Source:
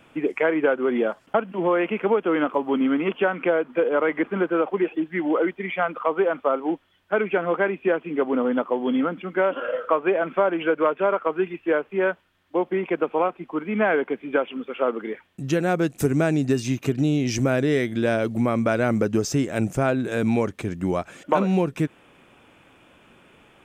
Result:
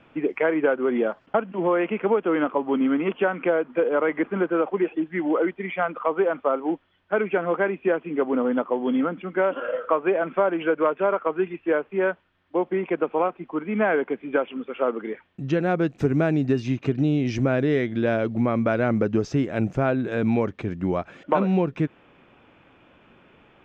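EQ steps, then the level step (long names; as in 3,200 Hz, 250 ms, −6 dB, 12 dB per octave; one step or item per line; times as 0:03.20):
high-frequency loss of the air 210 metres
0.0 dB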